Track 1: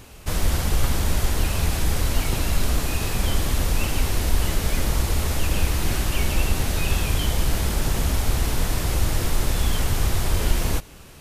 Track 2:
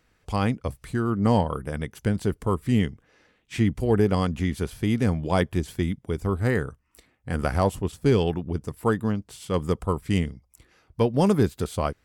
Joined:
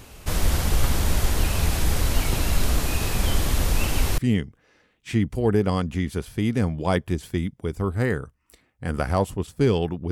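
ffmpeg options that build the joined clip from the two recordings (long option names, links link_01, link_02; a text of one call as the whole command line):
ffmpeg -i cue0.wav -i cue1.wav -filter_complex "[0:a]apad=whole_dur=10.11,atrim=end=10.11,atrim=end=4.182[link_01];[1:a]atrim=start=2.628:end=8.56[link_02];[link_01][link_02]acrossfade=duration=0.004:curve1=hsin:curve2=hsin" out.wav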